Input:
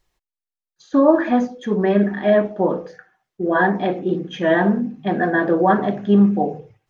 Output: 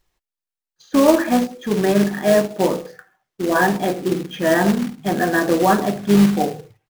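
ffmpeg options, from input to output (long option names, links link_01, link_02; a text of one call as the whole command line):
ffmpeg -i in.wav -filter_complex "[0:a]asplit=2[link_01][link_02];[link_02]asetrate=33038,aresample=44100,atempo=1.33484,volume=-17dB[link_03];[link_01][link_03]amix=inputs=2:normalize=0,acrusher=bits=3:mode=log:mix=0:aa=0.000001" out.wav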